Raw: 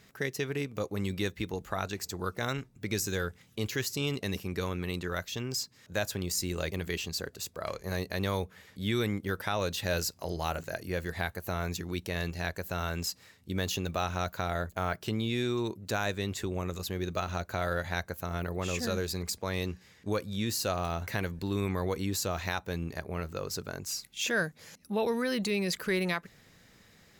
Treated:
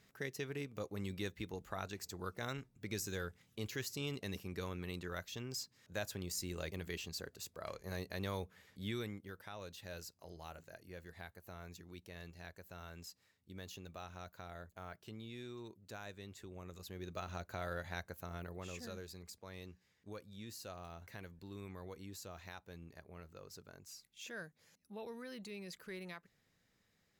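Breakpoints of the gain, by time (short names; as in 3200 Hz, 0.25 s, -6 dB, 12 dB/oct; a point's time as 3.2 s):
8.84 s -9.5 dB
9.34 s -18 dB
16.44 s -18 dB
17.29 s -10.5 dB
18.2 s -10.5 dB
19.22 s -18 dB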